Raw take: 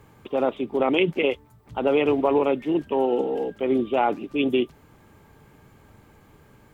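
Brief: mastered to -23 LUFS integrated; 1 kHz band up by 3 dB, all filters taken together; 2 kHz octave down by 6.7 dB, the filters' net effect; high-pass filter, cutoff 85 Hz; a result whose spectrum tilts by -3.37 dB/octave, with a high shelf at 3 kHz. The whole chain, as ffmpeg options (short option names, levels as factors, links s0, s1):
-af "highpass=85,equalizer=f=1000:t=o:g=6,equalizer=f=2000:t=o:g=-7.5,highshelf=f=3000:g=-6.5"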